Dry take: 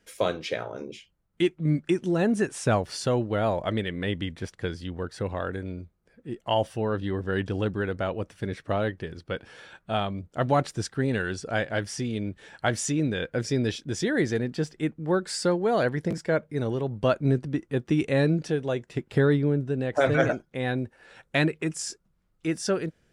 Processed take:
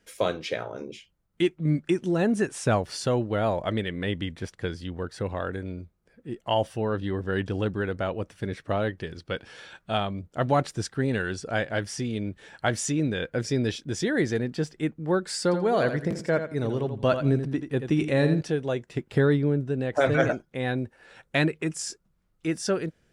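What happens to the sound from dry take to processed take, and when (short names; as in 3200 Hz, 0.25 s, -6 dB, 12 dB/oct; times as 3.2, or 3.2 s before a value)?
8.99–9.98 bell 4800 Hz +4.5 dB 2.2 oct
15.43–18.41 feedback echo 84 ms, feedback 21%, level -9 dB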